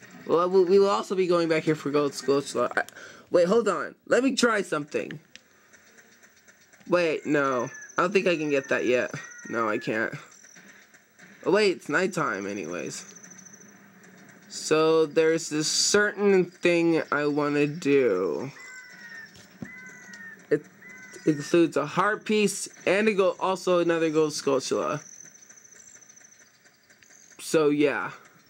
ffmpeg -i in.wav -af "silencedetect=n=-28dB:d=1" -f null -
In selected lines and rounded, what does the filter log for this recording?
silence_start: 5.36
silence_end: 6.90 | silence_duration: 1.55
silence_start: 10.16
silence_end: 11.46 | silence_duration: 1.31
silence_start: 12.99
silence_end: 14.54 | silence_duration: 1.55
silence_start: 18.47
silence_end: 19.62 | silence_duration: 1.15
silence_start: 24.97
silence_end: 27.46 | silence_duration: 2.49